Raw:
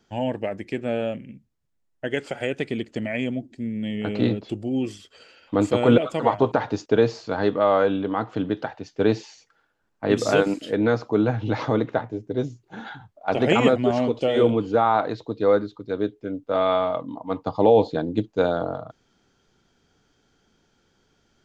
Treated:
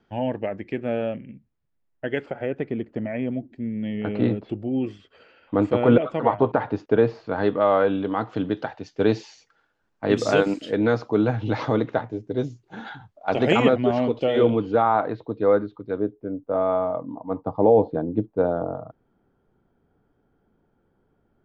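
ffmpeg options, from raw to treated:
-af "asetnsamples=n=441:p=0,asendcmd='2.26 lowpass f 1400;3.31 lowpass f 2200;7.36 lowpass f 3300;7.98 lowpass f 6600;13.62 lowpass f 3700;14.82 lowpass f 2100;16 lowpass f 1000',lowpass=2.6k"

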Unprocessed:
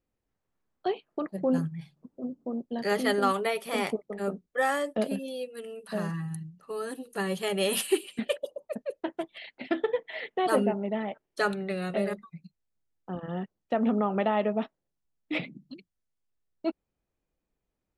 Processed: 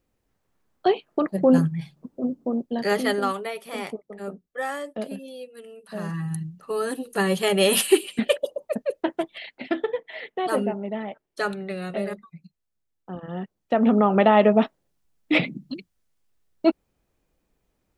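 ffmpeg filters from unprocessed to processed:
-af "volume=30.5dB,afade=t=out:st=2.3:d=1.13:silence=0.251189,afade=t=in:st=5.93:d=0.5:silence=0.281838,afade=t=out:st=9.03:d=0.92:silence=0.421697,afade=t=in:st=13.29:d=1.22:silence=0.298538"

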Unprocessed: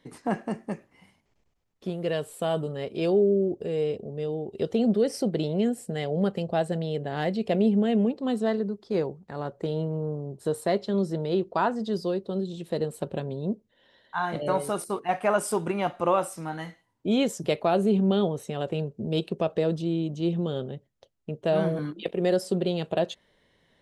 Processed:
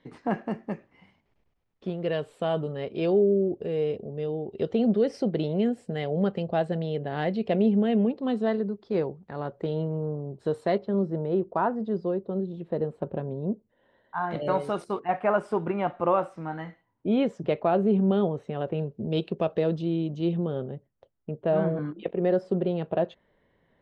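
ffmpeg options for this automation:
-af "asetnsamples=n=441:p=0,asendcmd='10.78 lowpass f 1400;14.31 lowpass f 3700;15 lowpass f 2000;18.81 lowpass f 3500;20.37 lowpass f 1700',lowpass=3.4k"

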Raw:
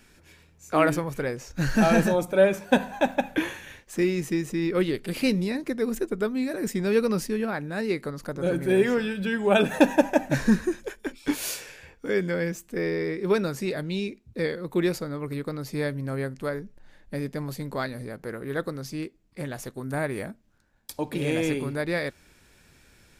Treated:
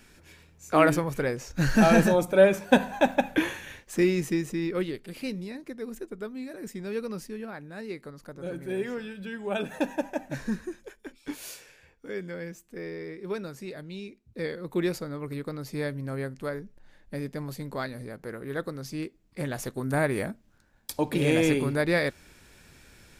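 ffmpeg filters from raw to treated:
-af "volume=14dB,afade=t=out:st=4.11:d=0.98:silence=0.281838,afade=t=in:st=14.09:d=0.57:silence=0.446684,afade=t=in:st=18.73:d=1.02:silence=0.501187"

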